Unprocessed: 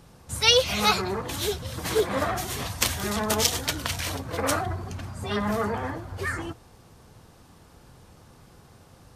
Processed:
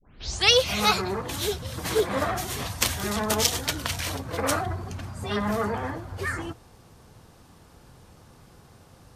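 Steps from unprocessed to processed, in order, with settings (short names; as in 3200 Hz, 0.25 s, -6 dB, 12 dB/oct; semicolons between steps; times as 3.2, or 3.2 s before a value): tape start at the beginning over 0.50 s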